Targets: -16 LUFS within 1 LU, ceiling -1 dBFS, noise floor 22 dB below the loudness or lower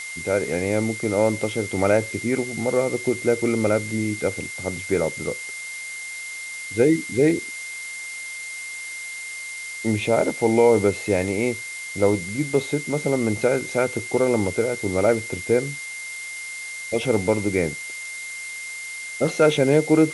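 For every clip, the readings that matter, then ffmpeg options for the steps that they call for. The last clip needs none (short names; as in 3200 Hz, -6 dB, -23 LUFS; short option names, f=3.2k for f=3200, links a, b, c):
steady tone 2100 Hz; tone level -32 dBFS; noise floor -34 dBFS; noise floor target -46 dBFS; loudness -23.5 LUFS; peak -5.0 dBFS; loudness target -16.0 LUFS
-> -af "bandreject=f=2.1k:w=30"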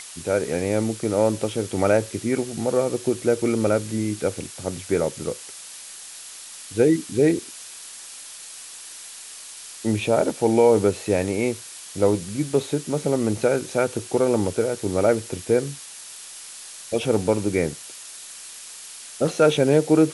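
steady tone none; noise floor -40 dBFS; noise floor target -45 dBFS
-> -af "afftdn=nr=6:nf=-40"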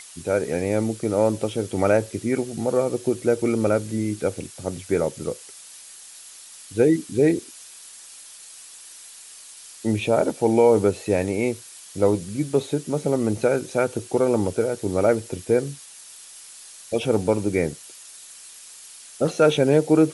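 noise floor -44 dBFS; noise floor target -45 dBFS
-> -af "afftdn=nr=6:nf=-44"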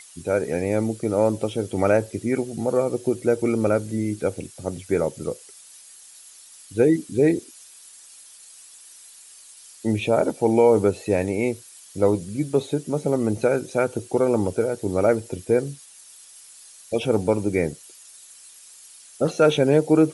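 noise floor -47 dBFS; loudness -22.5 LUFS; peak -5.5 dBFS; loudness target -16.0 LUFS
-> -af "volume=6.5dB,alimiter=limit=-1dB:level=0:latency=1"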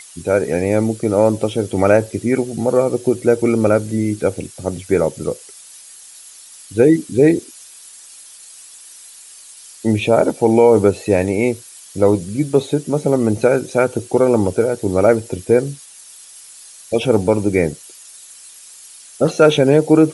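loudness -16.5 LUFS; peak -1.0 dBFS; noise floor -41 dBFS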